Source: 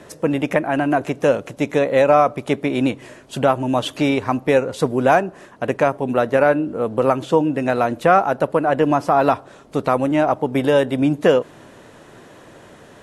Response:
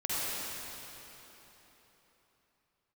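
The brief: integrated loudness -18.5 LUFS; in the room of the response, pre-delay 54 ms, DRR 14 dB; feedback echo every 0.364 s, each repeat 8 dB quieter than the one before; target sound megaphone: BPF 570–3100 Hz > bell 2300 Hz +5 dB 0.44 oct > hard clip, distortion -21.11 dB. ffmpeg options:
-filter_complex "[0:a]aecho=1:1:364|728|1092|1456|1820:0.398|0.159|0.0637|0.0255|0.0102,asplit=2[a][b];[1:a]atrim=start_sample=2205,adelay=54[c];[b][c]afir=irnorm=-1:irlink=0,volume=-22.5dB[d];[a][d]amix=inputs=2:normalize=0,highpass=570,lowpass=3.1k,equalizer=f=2.3k:t=o:w=0.44:g=5,asoftclip=type=hard:threshold=-9.5dB,volume=3dB"

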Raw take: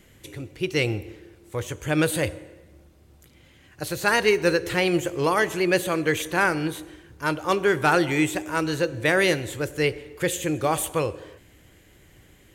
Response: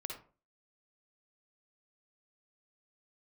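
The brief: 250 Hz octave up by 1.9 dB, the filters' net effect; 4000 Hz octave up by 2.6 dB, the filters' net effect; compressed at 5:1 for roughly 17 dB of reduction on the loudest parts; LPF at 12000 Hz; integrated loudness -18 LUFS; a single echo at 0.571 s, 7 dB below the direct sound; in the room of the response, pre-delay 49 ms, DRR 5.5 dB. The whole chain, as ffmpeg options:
-filter_complex "[0:a]lowpass=12k,equalizer=f=250:t=o:g=3,equalizer=f=4k:t=o:g=3.5,acompressor=threshold=-35dB:ratio=5,aecho=1:1:571:0.447,asplit=2[a][b];[1:a]atrim=start_sample=2205,adelay=49[c];[b][c]afir=irnorm=-1:irlink=0,volume=-4dB[d];[a][d]amix=inputs=2:normalize=0,volume=18dB"

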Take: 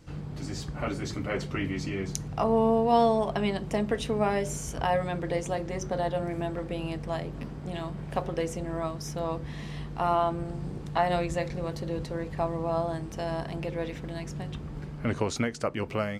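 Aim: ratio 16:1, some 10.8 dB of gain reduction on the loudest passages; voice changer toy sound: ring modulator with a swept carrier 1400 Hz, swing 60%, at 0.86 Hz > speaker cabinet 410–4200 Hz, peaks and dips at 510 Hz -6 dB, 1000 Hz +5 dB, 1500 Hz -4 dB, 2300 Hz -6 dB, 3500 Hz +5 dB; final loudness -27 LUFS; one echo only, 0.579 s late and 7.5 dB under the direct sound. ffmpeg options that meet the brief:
-af "acompressor=threshold=-27dB:ratio=16,aecho=1:1:579:0.422,aeval=exprs='val(0)*sin(2*PI*1400*n/s+1400*0.6/0.86*sin(2*PI*0.86*n/s))':c=same,highpass=410,equalizer=f=510:t=q:w=4:g=-6,equalizer=f=1k:t=q:w=4:g=5,equalizer=f=1.5k:t=q:w=4:g=-4,equalizer=f=2.3k:t=q:w=4:g=-6,equalizer=f=3.5k:t=q:w=4:g=5,lowpass=f=4.2k:w=0.5412,lowpass=f=4.2k:w=1.3066,volume=9dB"

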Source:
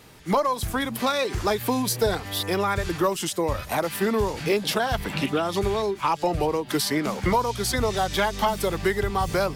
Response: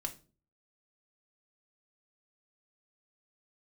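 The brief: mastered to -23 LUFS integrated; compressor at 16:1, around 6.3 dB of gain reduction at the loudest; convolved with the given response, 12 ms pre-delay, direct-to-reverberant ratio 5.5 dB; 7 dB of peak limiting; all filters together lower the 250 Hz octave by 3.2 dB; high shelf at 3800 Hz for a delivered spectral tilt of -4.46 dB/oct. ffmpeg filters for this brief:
-filter_complex "[0:a]equalizer=f=250:t=o:g=-4.5,highshelf=f=3.8k:g=-5,acompressor=threshold=-25dB:ratio=16,alimiter=limit=-23.5dB:level=0:latency=1,asplit=2[a][b];[1:a]atrim=start_sample=2205,adelay=12[c];[b][c]afir=irnorm=-1:irlink=0,volume=-5dB[d];[a][d]amix=inputs=2:normalize=0,volume=8.5dB"

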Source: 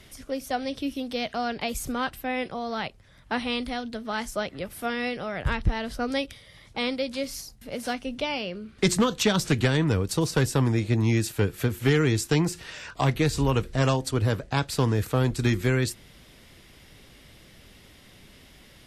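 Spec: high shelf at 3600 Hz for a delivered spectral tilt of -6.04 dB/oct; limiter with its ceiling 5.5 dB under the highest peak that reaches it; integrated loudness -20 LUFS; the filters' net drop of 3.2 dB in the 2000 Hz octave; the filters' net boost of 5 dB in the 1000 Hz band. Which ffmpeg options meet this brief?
-af "equalizer=f=1k:t=o:g=8.5,equalizer=f=2k:t=o:g=-5,highshelf=f=3.6k:g=-8.5,volume=7.5dB,alimiter=limit=-6.5dB:level=0:latency=1"

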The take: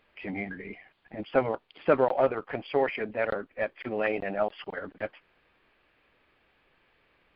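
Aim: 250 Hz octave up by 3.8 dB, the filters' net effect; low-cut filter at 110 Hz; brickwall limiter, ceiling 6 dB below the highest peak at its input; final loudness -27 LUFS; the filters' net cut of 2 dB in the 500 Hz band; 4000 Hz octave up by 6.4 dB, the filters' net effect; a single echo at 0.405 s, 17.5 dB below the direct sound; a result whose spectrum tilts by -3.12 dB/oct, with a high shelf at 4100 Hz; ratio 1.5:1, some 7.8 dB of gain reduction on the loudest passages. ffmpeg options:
-af "highpass=110,equalizer=f=250:t=o:g=6,equalizer=f=500:t=o:g=-4,equalizer=f=4k:t=o:g=5.5,highshelf=f=4.1k:g=7.5,acompressor=threshold=-40dB:ratio=1.5,alimiter=limit=-24dB:level=0:latency=1,aecho=1:1:405:0.133,volume=11dB"

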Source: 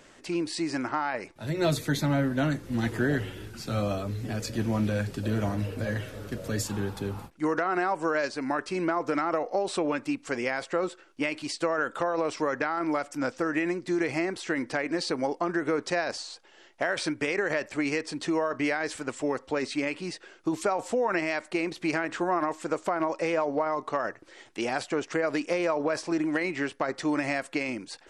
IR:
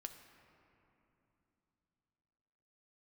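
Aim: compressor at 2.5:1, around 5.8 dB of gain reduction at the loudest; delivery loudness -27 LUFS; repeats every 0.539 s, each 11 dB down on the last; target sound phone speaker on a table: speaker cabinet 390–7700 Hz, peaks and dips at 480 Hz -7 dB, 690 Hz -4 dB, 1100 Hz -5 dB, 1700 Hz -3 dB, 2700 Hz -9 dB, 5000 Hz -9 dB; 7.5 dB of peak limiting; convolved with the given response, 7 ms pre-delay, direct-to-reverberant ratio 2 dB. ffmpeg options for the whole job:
-filter_complex "[0:a]acompressor=threshold=-31dB:ratio=2.5,alimiter=level_in=1dB:limit=-24dB:level=0:latency=1,volume=-1dB,aecho=1:1:539|1078|1617:0.282|0.0789|0.0221,asplit=2[a][b];[1:a]atrim=start_sample=2205,adelay=7[c];[b][c]afir=irnorm=-1:irlink=0,volume=2.5dB[d];[a][d]amix=inputs=2:normalize=0,highpass=f=390:w=0.5412,highpass=f=390:w=1.3066,equalizer=f=480:t=q:w=4:g=-7,equalizer=f=690:t=q:w=4:g=-4,equalizer=f=1.1k:t=q:w=4:g=-5,equalizer=f=1.7k:t=q:w=4:g=-3,equalizer=f=2.7k:t=q:w=4:g=-9,equalizer=f=5k:t=q:w=4:g=-9,lowpass=f=7.7k:w=0.5412,lowpass=f=7.7k:w=1.3066,volume=13dB"

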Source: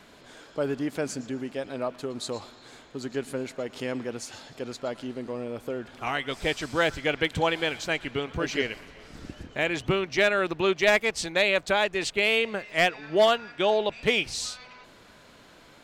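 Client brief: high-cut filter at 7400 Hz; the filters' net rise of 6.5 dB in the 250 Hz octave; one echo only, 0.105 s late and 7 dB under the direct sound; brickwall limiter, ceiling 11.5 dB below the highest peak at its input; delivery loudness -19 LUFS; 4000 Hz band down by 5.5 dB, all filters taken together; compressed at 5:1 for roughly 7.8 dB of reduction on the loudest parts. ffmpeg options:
-af "lowpass=7.4k,equalizer=f=250:t=o:g=8.5,equalizer=f=4k:t=o:g=-7.5,acompressor=threshold=-24dB:ratio=5,alimiter=level_in=1.5dB:limit=-24dB:level=0:latency=1,volume=-1.5dB,aecho=1:1:105:0.447,volume=16dB"

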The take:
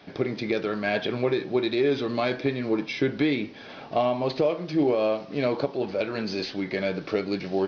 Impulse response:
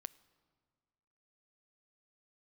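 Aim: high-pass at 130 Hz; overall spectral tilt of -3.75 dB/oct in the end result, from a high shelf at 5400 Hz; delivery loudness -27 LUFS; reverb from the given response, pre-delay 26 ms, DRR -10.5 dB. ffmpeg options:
-filter_complex "[0:a]highpass=130,highshelf=f=5.4k:g=7,asplit=2[a][b];[1:a]atrim=start_sample=2205,adelay=26[c];[b][c]afir=irnorm=-1:irlink=0,volume=15.5dB[d];[a][d]amix=inputs=2:normalize=0,volume=-11.5dB"

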